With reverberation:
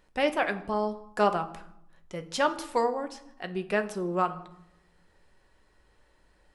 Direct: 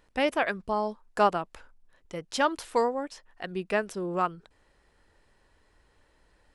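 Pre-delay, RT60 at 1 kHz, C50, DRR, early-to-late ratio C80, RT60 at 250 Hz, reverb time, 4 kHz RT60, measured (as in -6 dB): 5 ms, 0.75 s, 14.5 dB, 7.0 dB, 17.0 dB, 1.2 s, 0.75 s, 0.50 s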